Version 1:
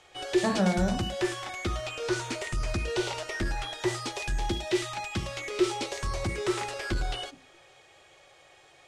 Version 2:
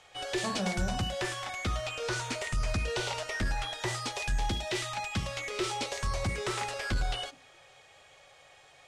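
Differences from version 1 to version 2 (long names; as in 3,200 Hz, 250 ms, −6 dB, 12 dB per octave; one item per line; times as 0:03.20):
speech −8.5 dB
background: add parametric band 350 Hz −11.5 dB 0.33 octaves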